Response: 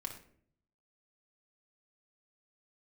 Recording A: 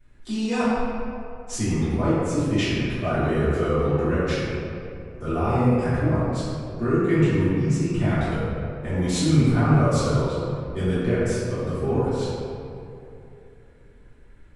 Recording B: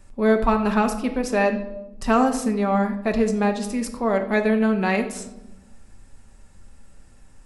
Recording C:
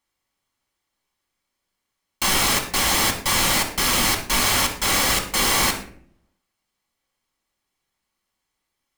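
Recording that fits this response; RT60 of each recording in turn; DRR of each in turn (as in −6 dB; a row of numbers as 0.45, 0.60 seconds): C; 2.9, 1.0, 0.55 seconds; −15.5, 4.5, 0.5 decibels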